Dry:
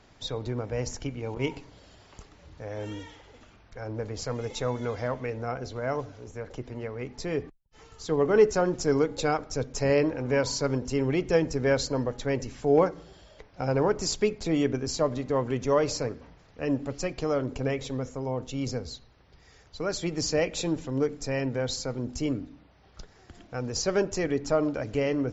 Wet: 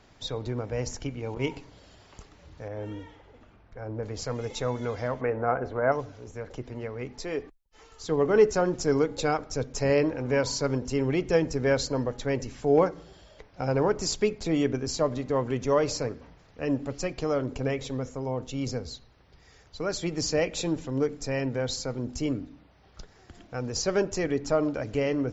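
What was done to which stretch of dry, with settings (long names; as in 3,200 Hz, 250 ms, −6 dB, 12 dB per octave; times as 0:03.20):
0:02.68–0:04.03: low-pass filter 1,400 Hz 6 dB per octave
0:05.21–0:05.92: drawn EQ curve 120 Hz 0 dB, 740 Hz +8 dB, 1,600 Hz +7 dB, 4,800 Hz −17 dB
0:07.18–0:08.03: parametric band 120 Hz −13 dB 1.4 octaves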